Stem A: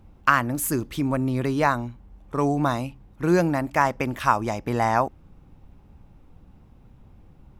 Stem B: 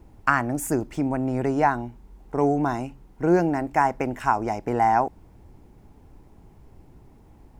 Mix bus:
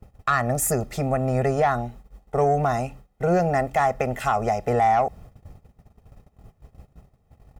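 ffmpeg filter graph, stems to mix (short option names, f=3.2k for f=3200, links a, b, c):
-filter_complex "[0:a]acompressor=threshold=-25dB:ratio=6,volume=-2dB[a];[1:a]highpass=f=44:p=1,aecho=1:1:1.6:0.96,acontrast=80,volume=-1,adelay=0.3,volume=-3dB,asplit=2[b][c];[c]apad=whole_len=334941[d];[a][d]sidechaincompress=threshold=-26dB:ratio=8:attack=16:release=159[e];[e][b]amix=inputs=2:normalize=0,agate=range=-19dB:threshold=-41dB:ratio=16:detection=peak,alimiter=limit=-12.5dB:level=0:latency=1:release=117"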